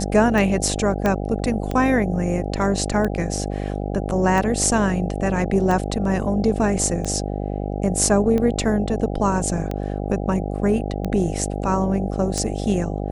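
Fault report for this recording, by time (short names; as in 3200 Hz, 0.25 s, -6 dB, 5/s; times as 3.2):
buzz 50 Hz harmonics 16 -26 dBFS
tick 45 rpm
1.06 pop -8 dBFS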